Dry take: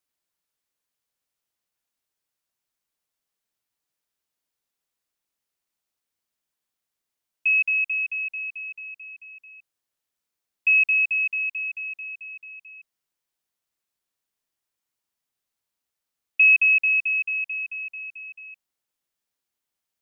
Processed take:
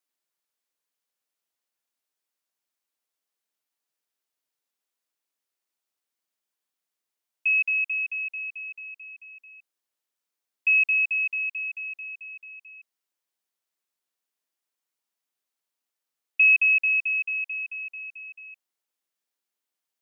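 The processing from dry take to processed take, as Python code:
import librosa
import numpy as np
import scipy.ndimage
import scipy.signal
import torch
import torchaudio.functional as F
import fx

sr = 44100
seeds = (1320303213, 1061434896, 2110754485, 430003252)

y = scipy.signal.sosfilt(scipy.signal.butter(2, 240.0, 'highpass', fs=sr, output='sos'), x)
y = F.gain(torch.from_numpy(y), -2.0).numpy()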